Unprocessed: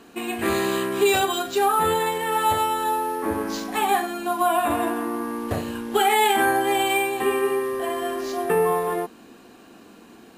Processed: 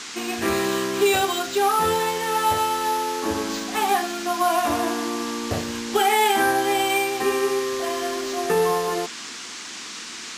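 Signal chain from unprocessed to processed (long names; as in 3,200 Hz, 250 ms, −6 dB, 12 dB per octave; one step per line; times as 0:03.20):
noise in a band 970–7,300 Hz −36 dBFS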